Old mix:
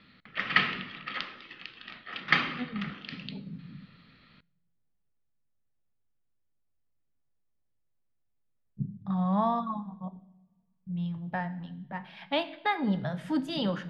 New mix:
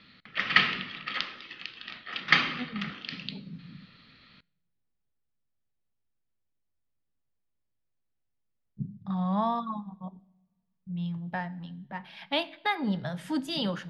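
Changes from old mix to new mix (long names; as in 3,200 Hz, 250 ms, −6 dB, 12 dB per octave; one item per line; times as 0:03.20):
speech: send −7.0 dB
master: add high-shelf EQ 3,600 Hz +10.5 dB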